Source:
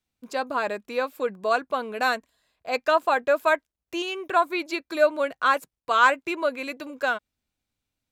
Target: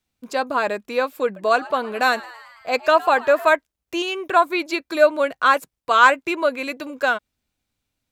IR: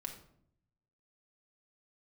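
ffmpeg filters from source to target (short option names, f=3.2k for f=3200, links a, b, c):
-filter_complex "[0:a]asettb=1/sr,asplit=3[a][b][c];[a]atrim=end=1.254[d];[b]atrim=start=1.25:end=3.48,asetpts=PTS-STARTPTS,afade=t=in:d=0.004:c=qsin,afade=t=out:st=2.226:d=0.004:c=qsin,asplit=7[e][f][g][h][i][j][k];[f]adelay=110,afreqshift=110,volume=-19.5dB[l];[g]adelay=220,afreqshift=220,volume=-23.2dB[m];[h]adelay=330,afreqshift=330,volume=-27dB[n];[i]adelay=440,afreqshift=440,volume=-30.7dB[o];[j]adelay=550,afreqshift=550,volume=-34.5dB[p];[k]adelay=660,afreqshift=660,volume=-38.2dB[q];[e][l][m][n][o][p][q]amix=inputs=7:normalize=0,atrim=end_sample=98343[r];[c]atrim=start=3.476[s];[d][r]acrossfade=d=0.004:c1=hsin:c2=qsin[t];[t][s]acrossfade=d=0.004:c1=qsin:c2=hsin,volume=5dB"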